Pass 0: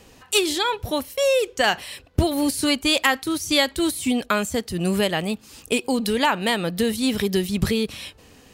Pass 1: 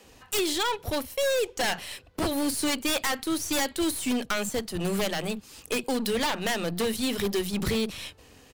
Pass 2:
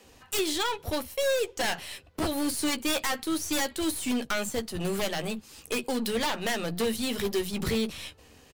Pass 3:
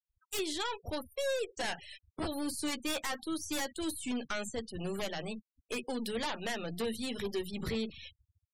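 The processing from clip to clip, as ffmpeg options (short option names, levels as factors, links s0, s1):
-filter_complex "[0:a]acrossover=split=200[s0][s1];[s0]adelay=40[s2];[s2][s1]amix=inputs=2:normalize=0,aeval=exprs='0.133*(abs(mod(val(0)/0.133+3,4)-2)-1)':c=same,aeval=exprs='0.133*(cos(1*acos(clip(val(0)/0.133,-1,1)))-cos(1*PI/2))+0.00944*(cos(8*acos(clip(val(0)/0.133,-1,1)))-cos(8*PI/2))':c=same,volume=0.708"
-filter_complex "[0:a]asplit=2[s0][s1];[s1]adelay=13,volume=0.335[s2];[s0][s2]amix=inputs=2:normalize=0,volume=0.794"
-af "afftfilt=real='re*gte(hypot(re,im),0.0141)':imag='im*gte(hypot(re,im),0.0141)':win_size=1024:overlap=0.75,volume=0.447"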